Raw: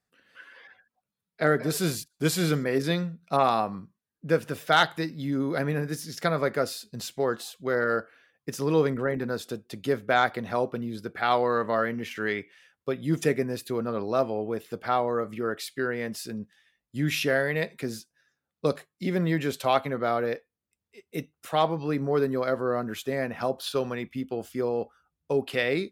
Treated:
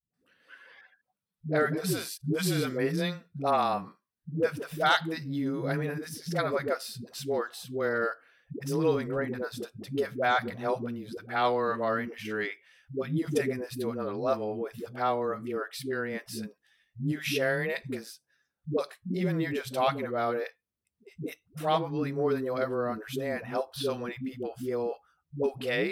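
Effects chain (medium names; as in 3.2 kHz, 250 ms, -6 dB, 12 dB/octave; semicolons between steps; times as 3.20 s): band-stop 6.9 kHz, Q 8.3; phase dispersion highs, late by 139 ms, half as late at 300 Hz; trim -3 dB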